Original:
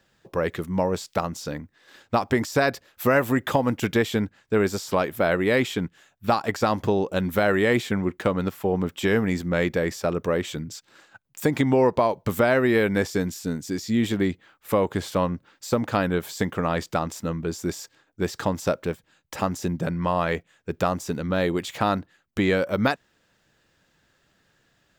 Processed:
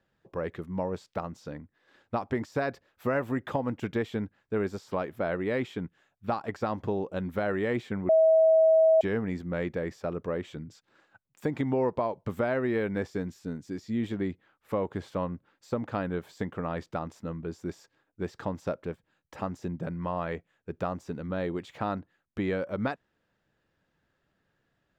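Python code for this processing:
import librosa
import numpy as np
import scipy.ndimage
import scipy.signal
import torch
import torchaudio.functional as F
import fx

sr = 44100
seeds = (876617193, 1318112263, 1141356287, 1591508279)

y = fx.edit(x, sr, fx.bleep(start_s=8.09, length_s=0.92, hz=643.0, db=-8.5), tone=tone)
y = fx.lowpass(y, sr, hz=1600.0, slope=6)
y = F.gain(torch.from_numpy(y), -7.5).numpy()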